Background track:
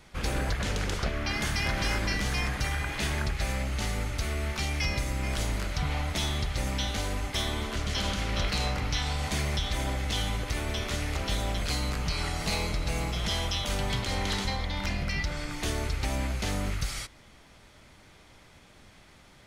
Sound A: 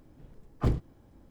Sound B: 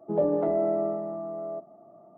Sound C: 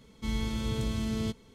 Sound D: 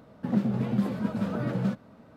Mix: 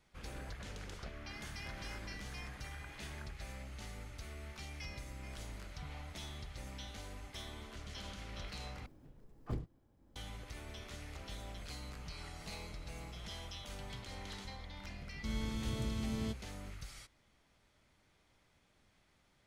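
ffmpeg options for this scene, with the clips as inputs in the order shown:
-filter_complex "[0:a]volume=0.141[s0];[1:a]acompressor=mode=upward:threshold=0.0251:ratio=2.5:attack=0.29:release=762:knee=2.83:detection=peak[s1];[s0]asplit=2[s2][s3];[s2]atrim=end=8.864[s4];[s1]atrim=end=1.3,asetpts=PTS-STARTPTS,volume=0.224[s5];[s3]atrim=start=10.156[s6];[3:a]atrim=end=1.54,asetpts=PTS-STARTPTS,volume=0.447,afade=t=in:d=0.004:c=hsin,afade=t=out:st=1.536:d=0.004:c=hsin,adelay=15010[s7];[s4][s5]acrossfade=d=0.004:c1=hsin:c2=hsin[s8];[s8][s6]acrossfade=d=0.004:c1=hsin:c2=hsin[s9];[s9][s7]amix=inputs=2:normalize=0"

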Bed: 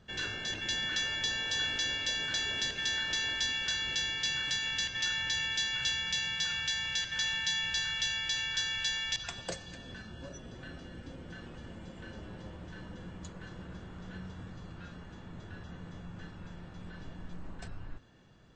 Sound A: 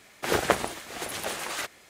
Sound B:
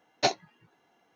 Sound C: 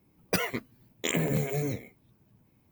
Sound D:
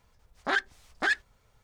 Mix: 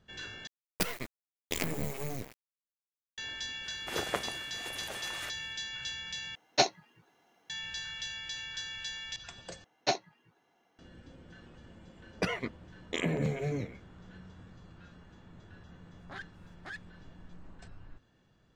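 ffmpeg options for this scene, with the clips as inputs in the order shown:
-filter_complex "[3:a]asplit=2[s0][s1];[2:a]asplit=2[s2][s3];[0:a]volume=0.447[s4];[s0]acrusher=bits=4:dc=4:mix=0:aa=0.000001[s5];[s2]highshelf=f=4300:g=5[s6];[s1]lowpass=4400[s7];[s4]asplit=4[s8][s9][s10][s11];[s8]atrim=end=0.474[s12];[s5]atrim=end=2.71,asetpts=PTS-STARTPTS,volume=0.668[s13];[s9]atrim=start=3.176:end=6.354[s14];[s6]atrim=end=1.15,asetpts=PTS-STARTPTS,volume=0.891[s15];[s10]atrim=start=7.496:end=9.644[s16];[s3]atrim=end=1.15,asetpts=PTS-STARTPTS,volume=0.631[s17];[s11]atrim=start=10.786[s18];[1:a]atrim=end=1.89,asetpts=PTS-STARTPTS,volume=0.299,afade=t=in:d=0.004:c=hsin,afade=t=out:st=1.886:d=0.004:c=hsin,adelay=3640[s19];[s7]atrim=end=2.71,asetpts=PTS-STARTPTS,volume=0.708,afade=t=in:d=0.004:c=hsin,afade=t=out:st=2.706:d=0.004:c=hsin,adelay=11890[s20];[4:a]atrim=end=1.63,asetpts=PTS-STARTPTS,volume=0.126,afade=t=in:d=0.004:c=hsin,afade=t=out:st=1.626:d=0.004:c=hsin,adelay=15630[s21];[s12][s13]acrossfade=d=0.004:c1=hsin:c2=hsin[s22];[s22][s14]acrossfade=d=0.004:c1=hsin:c2=hsin[s23];[s23][s15]acrossfade=d=0.004:c1=hsin:c2=hsin[s24];[s24][s16]acrossfade=d=0.004:c1=hsin:c2=hsin[s25];[s25][s17]acrossfade=d=0.004:c1=hsin:c2=hsin[s26];[s26][s18]acrossfade=d=0.004:c1=hsin:c2=hsin[s27];[s27][s19][s20][s21]amix=inputs=4:normalize=0"

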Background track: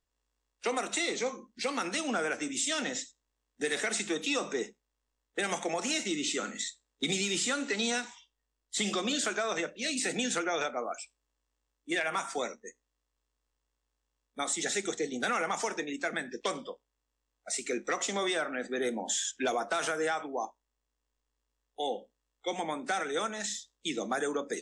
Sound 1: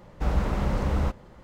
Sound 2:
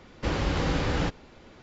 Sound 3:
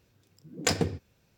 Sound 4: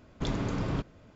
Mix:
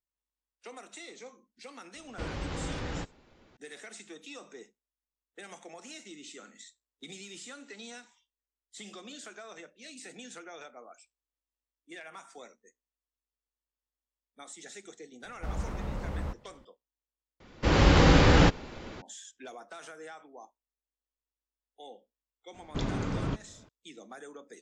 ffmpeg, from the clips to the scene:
-filter_complex "[2:a]asplit=2[s0][s1];[0:a]volume=0.178[s2];[s1]dynaudnorm=f=200:g=3:m=3.98[s3];[s2]asplit=2[s4][s5];[s4]atrim=end=17.404[s6];[s3]atrim=end=1.62,asetpts=PTS-STARTPTS,volume=0.668[s7];[s5]atrim=start=19.016[s8];[s0]atrim=end=1.62,asetpts=PTS-STARTPTS,volume=0.335,afade=t=in:d=0.004:c=hsin,afade=t=out:st=1.616:d=0.004:c=hsin,adelay=1950[s9];[1:a]atrim=end=1.43,asetpts=PTS-STARTPTS,volume=0.316,afade=t=in:d=0.004:c=hsin,afade=t=out:st=1.426:d=0.004:c=hsin,adelay=15220[s10];[4:a]atrim=end=1.15,asetpts=PTS-STARTPTS,volume=0.891,afade=t=in:d=0.004:c=hsin,afade=t=out:st=1.146:d=0.004:c=hsin,adelay=22540[s11];[s6][s7]acrossfade=d=0.004:c1=hsin:c2=hsin[s12];[s12][s8]acrossfade=d=0.004:c1=hsin:c2=hsin[s13];[s13][s9][s10][s11]amix=inputs=4:normalize=0"

